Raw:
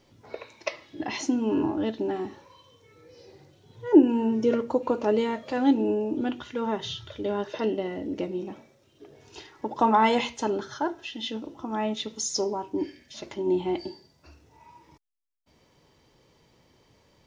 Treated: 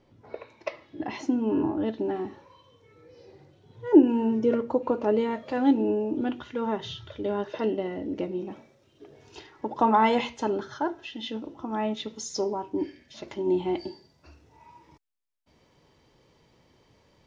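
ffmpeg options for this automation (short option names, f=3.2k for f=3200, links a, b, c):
-af "asetnsamples=n=441:p=0,asendcmd='1.88 lowpass f 2400;3.84 lowpass f 3700;4.39 lowpass f 1900;5.31 lowpass f 2900;8.51 lowpass f 5500;9.39 lowpass f 3100;13.28 lowpass f 5600',lowpass=f=1.5k:p=1"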